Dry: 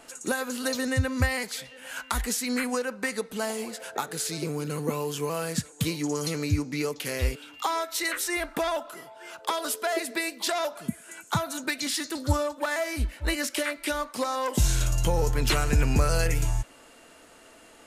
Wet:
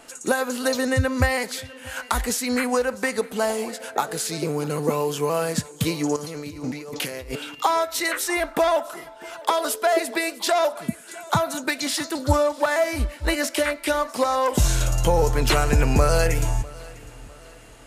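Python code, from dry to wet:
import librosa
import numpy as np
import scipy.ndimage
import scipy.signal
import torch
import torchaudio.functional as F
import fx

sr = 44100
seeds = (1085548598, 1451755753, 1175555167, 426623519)

p1 = fx.dynamic_eq(x, sr, hz=680.0, q=0.81, threshold_db=-42.0, ratio=4.0, max_db=6)
p2 = fx.over_compress(p1, sr, threshold_db=-36.0, ratio=-1.0, at=(6.16, 7.55))
p3 = p2 + fx.echo_feedback(p2, sr, ms=650, feedback_pct=39, wet_db=-21.5, dry=0)
y = p3 * 10.0 ** (3.0 / 20.0)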